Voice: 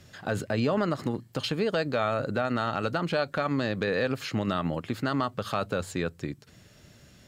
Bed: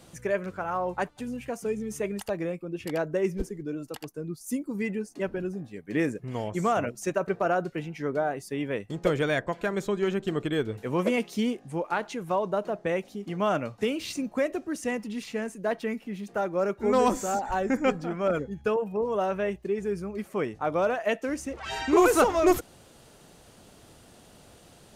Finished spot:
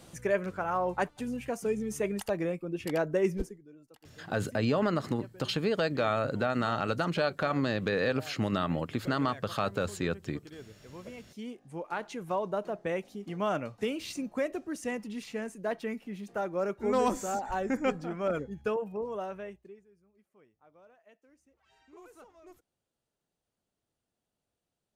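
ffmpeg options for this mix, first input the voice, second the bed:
ffmpeg -i stem1.wav -i stem2.wav -filter_complex "[0:a]adelay=4050,volume=-1.5dB[link_01];[1:a]volume=15dB,afade=type=out:start_time=3.35:duration=0.25:silence=0.105925,afade=type=in:start_time=11.26:duration=0.94:silence=0.16788,afade=type=out:start_time=18.69:duration=1.16:silence=0.0354813[link_02];[link_01][link_02]amix=inputs=2:normalize=0" out.wav

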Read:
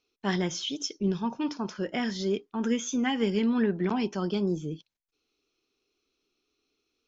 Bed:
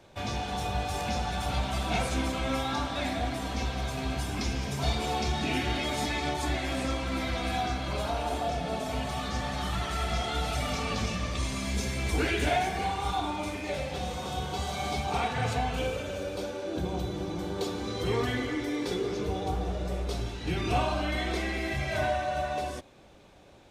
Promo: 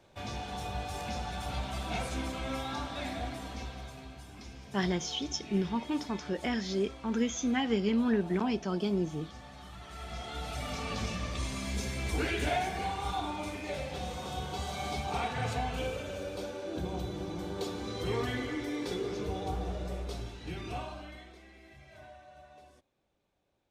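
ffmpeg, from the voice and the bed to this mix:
ffmpeg -i stem1.wav -i stem2.wav -filter_complex "[0:a]adelay=4500,volume=-2.5dB[link_01];[1:a]volume=6.5dB,afade=type=out:start_time=3.22:duration=0.91:silence=0.298538,afade=type=in:start_time=9.79:duration=1.28:silence=0.237137,afade=type=out:start_time=19.72:duration=1.62:silence=0.105925[link_02];[link_01][link_02]amix=inputs=2:normalize=0" out.wav

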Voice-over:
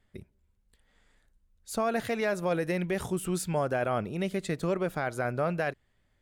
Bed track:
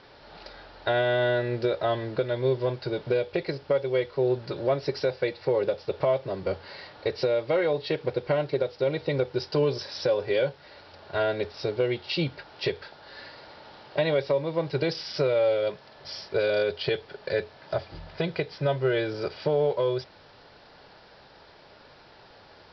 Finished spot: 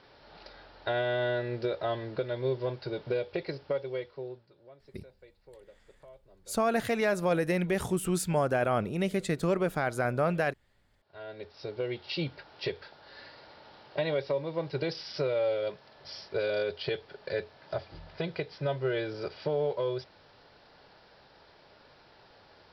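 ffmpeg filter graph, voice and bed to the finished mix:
ffmpeg -i stem1.wav -i stem2.wav -filter_complex "[0:a]adelay=4800,volume=1.5dB[link_01];[1:a]volume=18dB,afade=type=out:start_time=3.6:duration=0.88:silence=0.0668344,afade=type=in:start_time=11.04:duration=1.07:silence=0.0668344[link_02];[link_01][link_02]amix=inputs=2:normalize=0" out.wav

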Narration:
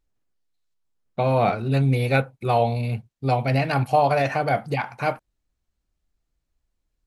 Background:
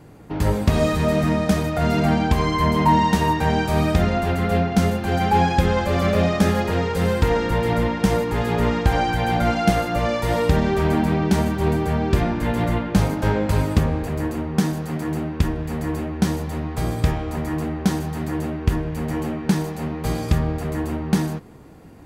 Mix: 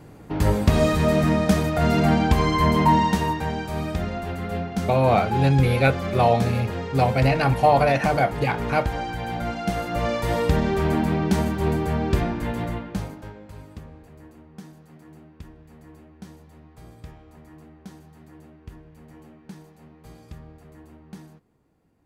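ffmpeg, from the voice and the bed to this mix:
ffmpeg -i stem1.wav -i stem2.wav -filter_complex "[0:a]adelay=3700,volume=1.5dB[link_01];[1:a]volume=6dB,afade=type=out:start_time=2.76:duration=0.8:silence=0.375837,afade=type=in:start_time=9.66:duration=0.4:silence=0.501187,afade=type=out:start_time=12.12:duration=1.21:silence=0.105925[link_02];[link_01][link_02]amix=inputs=2:normalize=0" out.wav

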